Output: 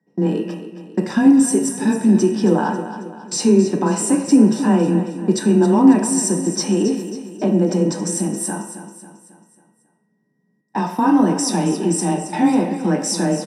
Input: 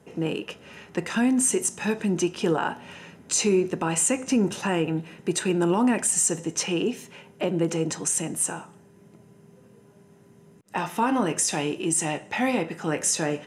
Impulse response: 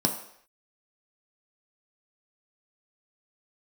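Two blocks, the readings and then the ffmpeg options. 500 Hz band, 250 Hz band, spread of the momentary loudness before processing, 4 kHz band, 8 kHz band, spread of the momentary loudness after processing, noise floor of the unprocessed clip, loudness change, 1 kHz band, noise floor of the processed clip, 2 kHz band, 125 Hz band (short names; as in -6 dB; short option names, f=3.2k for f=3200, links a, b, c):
+6.5 dB, +11.0 dB, 10 LU, +3.0 dB, +0.5 dB, 12 LU, -54 dBFS, +7.5 dB, +6.5 dB, -65 dBFS, 0.0 dB, +9.0 dB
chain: -filter_complex "[0:a]afreqshift=18,aeval=exprs='val(0)+0.00316*sin(2*PI*1900*n/s)':c=same,agate=range=-24dB:threshold=-36dB:ratio=16:detection=peak,aecho=1:1:272|544|816|1088|1360:0.266|0.125|0.0588|0.0276|0.013[a];[1:a]atrim=start_sample=2205[b];[a][b]afir=irnorm=-1:irlink=0,volume=-7.5dB"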